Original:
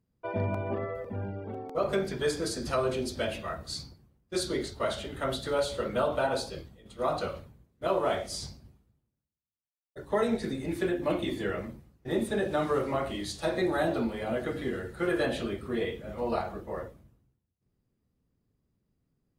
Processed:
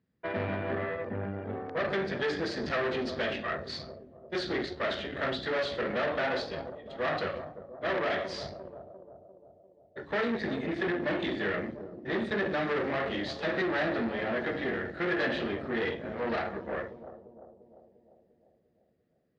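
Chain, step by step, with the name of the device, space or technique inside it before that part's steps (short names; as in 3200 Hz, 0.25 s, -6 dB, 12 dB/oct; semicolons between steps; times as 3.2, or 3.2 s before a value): analogue delay pedal into a guitar amplifier (analogue delay 0.347 s, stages 2048, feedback 57%, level -14 dB; tube stage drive 33 dB, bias 0.75; speaker cabinet 97–4500 Hz, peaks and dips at 120 Hz -6 dB, 950 Hz -4 dB, 1800 Hz +9 dB); gain +6 dB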